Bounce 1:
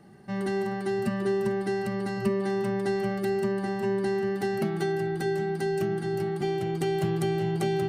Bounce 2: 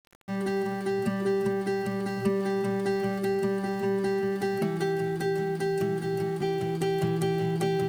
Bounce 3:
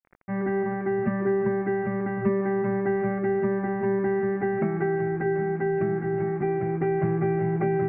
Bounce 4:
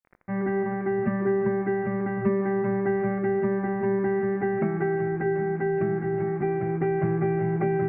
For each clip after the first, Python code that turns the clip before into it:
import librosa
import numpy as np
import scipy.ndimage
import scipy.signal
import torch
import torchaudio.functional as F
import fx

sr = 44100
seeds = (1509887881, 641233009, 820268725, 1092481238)

y1 = np.where(np.abs(x) >= 10.0 ** (-44.0 / 20.0), x, 0.0)
y2 = scipy.signal.sosfilt(scipy.signal.butter(12, 2300.0, 'lowpass', fs=sr, output='sos'), y1)
y2 = F.gain(torch.from_numpy(y2), 2.5).numpy()
y3 = fx.rev_schroeder(y2, sr, rt60_s=1.8, comb_ms=30, drr_db=18.0)